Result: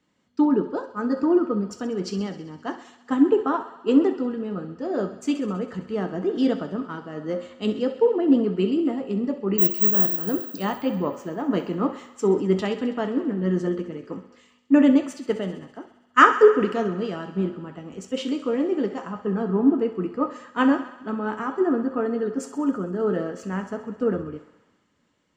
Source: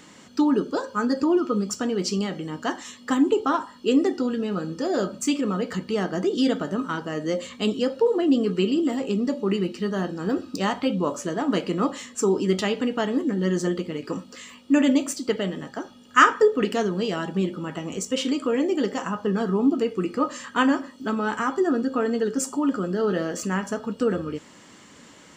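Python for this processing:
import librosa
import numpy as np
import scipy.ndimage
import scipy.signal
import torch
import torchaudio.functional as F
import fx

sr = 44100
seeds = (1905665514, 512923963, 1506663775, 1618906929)

p1 = fx.lowpass(x, sr, hz=1300.0, slope=6)
p2 = fx.resample_bad(p1, sr, factor=2, down='filtered', up='zero_stuff', at=(9.58, 10.16))
p3 = p2 + fx.echo_thinned(p2, sr, ms=66, feedback_pct=84, hz=320.0, wet_db=-13.0, dry=0)
y = fx.band_widen(p3, sr, depth_pct=70)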